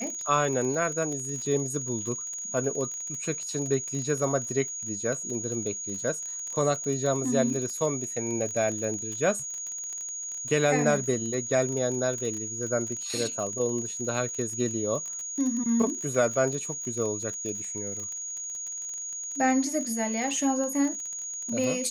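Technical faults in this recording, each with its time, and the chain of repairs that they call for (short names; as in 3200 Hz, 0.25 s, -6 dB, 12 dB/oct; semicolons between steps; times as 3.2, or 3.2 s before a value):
crackle 29/s -32 dBFS
tone 6700 Hz -33 dBFS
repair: de-click; notch 6700 Hz, Q 30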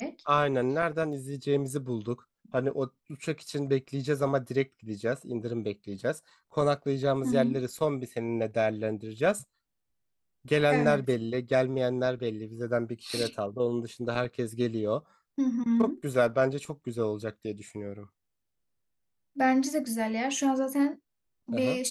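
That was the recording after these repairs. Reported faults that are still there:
none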